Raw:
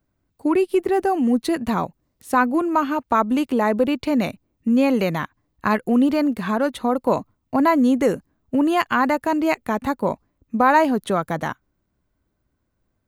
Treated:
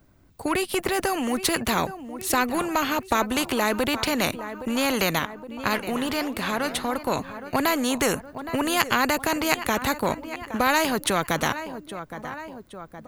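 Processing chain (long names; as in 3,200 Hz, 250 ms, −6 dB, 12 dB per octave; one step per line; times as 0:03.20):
0:05.19–0:07.19: flanger 1.7 Hz, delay 2.8 ms, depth 5.9 ms, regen +90%
repeating echo 817 ms, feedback 42%, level −22 dB
every bin compressed towards the loudest bin 2 to 1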